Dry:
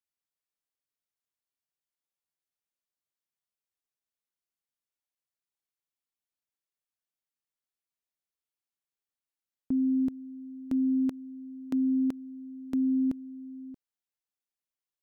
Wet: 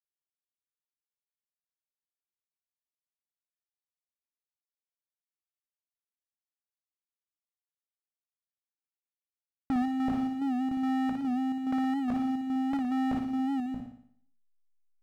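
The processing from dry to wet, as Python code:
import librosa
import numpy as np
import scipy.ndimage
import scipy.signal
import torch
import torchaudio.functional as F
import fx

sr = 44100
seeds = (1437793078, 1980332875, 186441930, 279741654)

p1 = scipy.signal.sosfilt(scipy.signal.butter(2, 1000.0, 'lowpass', fs=sr, output='sos'), x)
p2 = fx.hum_notches(p1, sr, base_hz=60, count=4)
p3 = p2 + 0.61 * np.pad(p2, (int(1.3 * sr / 1000.0), 0))[:len(p2)]
p4 = fx.over_compress(p3, sr, threshold_db=-36.0, ratio=-0.5)
p5 = p3 + F.gain(torch.from_numpy(p4), 2.5).numpy()
p6 = fx.chopper(p5, sr, hz=2.4, depth_pct=60, duty_pct=65)
p7 = 10.0 ** (-32.5 / 20.0) * np.tanh(p6 / 10.0 ** (-32.5 / 20.0))
p8 = fx.power_curve(p7, sr, exponent=0.7)
p9 = fx.backlash(p8, sr, play_db=-53.5)
p10 = p9 + fx.room_flutter(p9, sr, wall_m=10.0, rt60_s=0.61, dry=0)
p11 = fx.record_warp(p10, sr, rpm=78.0, depth_cents=100.0)
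y = F.gain(torch.from_numpy(p11), 7.0).numpy()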